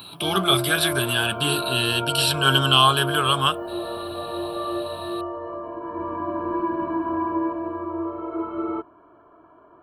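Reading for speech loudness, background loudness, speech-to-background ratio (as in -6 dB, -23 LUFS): -20.0 LUFS, -29.0 LUFS, 9.0 dB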